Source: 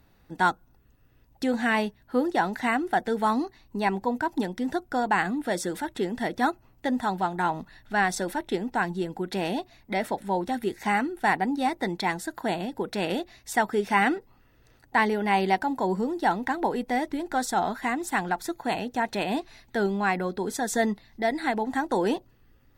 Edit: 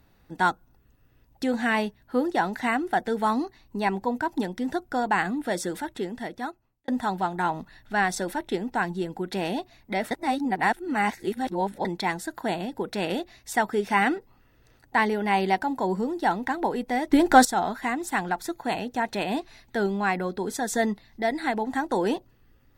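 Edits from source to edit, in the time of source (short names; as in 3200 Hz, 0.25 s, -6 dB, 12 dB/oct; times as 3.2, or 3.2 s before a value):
5.71–6.88 fade out
10.11–11.85 reverse
17.12–17.45 gain +12 dB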